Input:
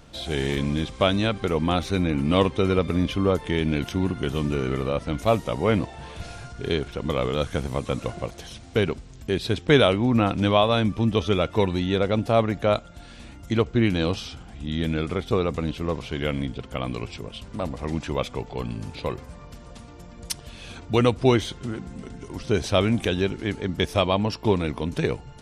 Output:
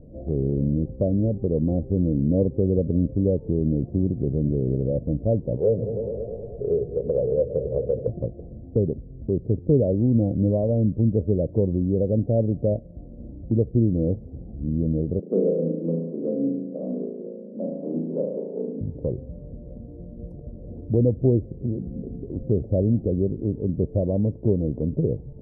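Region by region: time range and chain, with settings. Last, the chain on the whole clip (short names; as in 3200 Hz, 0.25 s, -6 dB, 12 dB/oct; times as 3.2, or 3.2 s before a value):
5.57–8.07 resonant low shelf 360 Hz -6.5 dB, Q 3 + doubler 17 ms -11 dB + repeats that get brighter 0.106 s, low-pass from 200 Hz, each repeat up 1 oct, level -6 dB
15.19–18.81 steep high-pass 170 Hz 72 dB/oct + flutter echo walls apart 6.2 m, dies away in 1.2 s + upward expander, over -31 dBFS
whole clip: elliptic low-pass 560 Hz, stop band 60 dB; dynamic EQ 120 Hz, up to +5 dB, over -38 dBFS, Q 1.3; compressor 1.5:1, threshold -33 dBFS; gain +5.5 dB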